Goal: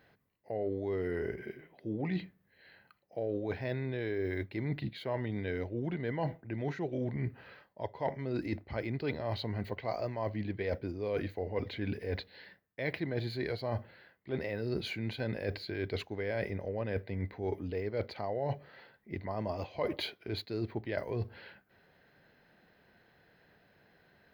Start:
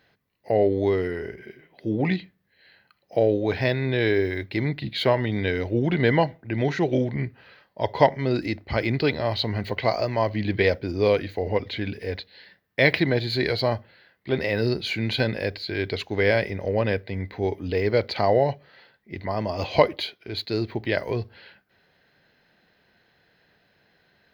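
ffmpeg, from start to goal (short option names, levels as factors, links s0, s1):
-af "equalizer=f=4400:t=o:w=2:g=-7.5,areverse,acompressor=threshold=0.0282:ratio=12,areverse"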